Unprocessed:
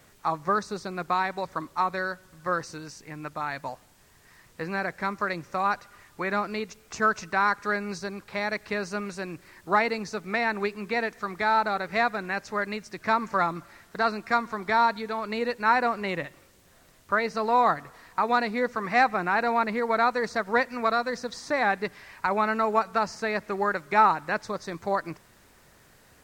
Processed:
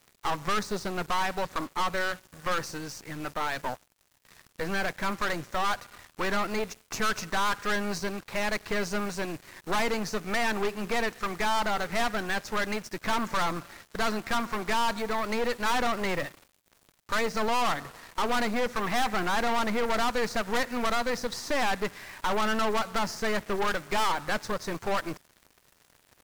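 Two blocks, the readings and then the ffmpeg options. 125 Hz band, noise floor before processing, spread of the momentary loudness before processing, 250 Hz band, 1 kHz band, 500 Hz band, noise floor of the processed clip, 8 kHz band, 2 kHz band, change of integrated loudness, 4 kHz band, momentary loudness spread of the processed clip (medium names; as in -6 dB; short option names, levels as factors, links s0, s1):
+0.5 dB, -58 dBFS, 12 LU, 0.0 dB, -4.0 dB, -2.0 dB, -66 dBFS, +8.0 dB, -2.5 dB, -2.5 dB, +5.5 dB, 7 LU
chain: -af "acrusher=bits=7:mix=0:aa=0.5,aeval=exprs='(tanh(44.7*val(0)+0.8)-tanh(0.8))/44.7':c=same,volume=2.51"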